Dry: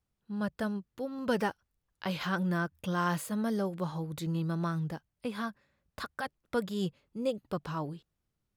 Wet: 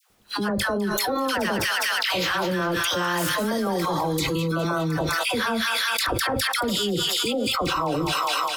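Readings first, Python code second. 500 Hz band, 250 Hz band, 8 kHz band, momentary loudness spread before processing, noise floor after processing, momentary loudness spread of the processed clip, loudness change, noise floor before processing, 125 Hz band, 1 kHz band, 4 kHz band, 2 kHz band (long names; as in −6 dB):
+10.0 dB, +6.5 dB, +20.0 dB, 9 LU, −28 dBFS, 2 LU, +11.0 dB, −84 dBFS, +5.0 dB, +12.5 dB, +21.5 dB, +15.0 dB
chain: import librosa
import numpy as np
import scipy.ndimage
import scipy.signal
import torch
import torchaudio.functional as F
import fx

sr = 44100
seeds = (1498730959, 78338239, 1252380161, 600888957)

y = fx.spec_clip(x, sr, under_db=15)
y = fx.hum_notches(y, sr, base_hz=50, count=3)
y = fx.rev_fdn(y, sr, rt60_s=0.43, lf_ratio=0.85, hf_ratio=0.25, size_ms=27.0, drr_db=12.0)
y = fx.leveller(y, sr, passes=1)
y = fx.dispersion(y, sr, late='lows', ms=99.0, hz=950.0)
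y = fx.noise_reduce_blind(y, sr, reduce_db=18)
y = fx.echo_wet_highpass(y, sr, ms=205, feedback_pct=47, hz=1900.0, wet_db=-7.5)
y = fx.env_flatten(y, sr, amount_pct=100)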